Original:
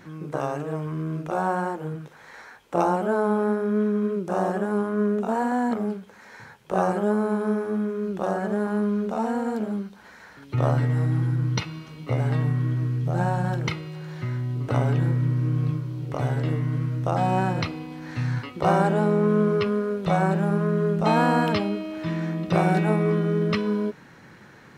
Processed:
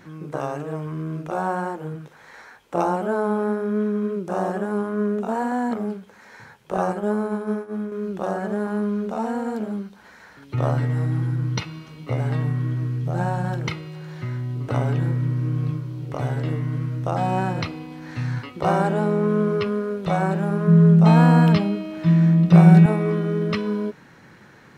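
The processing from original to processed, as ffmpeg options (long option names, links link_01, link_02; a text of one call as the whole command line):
ffmpeg -i in.wav -filter_complex "[0:a]asettb=1/sr,asplit=3[link_01][link_02][link_03];[link_01]atrim=end=6.774[link_04];[link_02]atrim=start=6.77:end=7.92,asetpts=PTS-STARTPTS,afade=type=in:duration=0.004:curve=qsin,afade=type=out:start_time=1.146:duration=0.004:curve=qsin,agate=range=-33dB:threshold=-23dB:ratio=3:release=100:detection=peak[link_05];[link_03]atrim=start=7.916[link_06];[link_04][link_05]acrossfade=duration=0.004:curve1=hsin:curve2=qsin[link_07];[link_07][link_06]acrossfade=duration=0.004:curve1=qsin:curve2=hsin,asettb=1/sr,asplit=3[link_08][link_09][link_10];[link_08]atrim=end=20.674[link_11];[link_09]atrim=start=20.67:end=22.86,asetpts=PTS-STARTPTS,afade=type=in:duration=0.004:curve=qsin,afade=type=out:start_time=2.186:duration=0.004:curve=qsin,equalizer=frequency=170:width_type=o:width=0.3:gain=15[link_12];[link_10]atrim=start=22.856[link_13];[link_11][link_12]acrossfade=duration=0.004:curve1=hsin:curve2=qsin[link_14];[link_14][link_13]acrossfade=duration=0.004:curve1=qsin:curve2=hsin" out.wav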